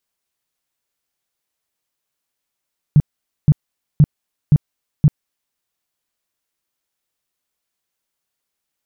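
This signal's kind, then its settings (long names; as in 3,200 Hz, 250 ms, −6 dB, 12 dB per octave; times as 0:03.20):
tone bursts 149 Hz, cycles 6, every 0.52 s, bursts 5, −5.5 dBFS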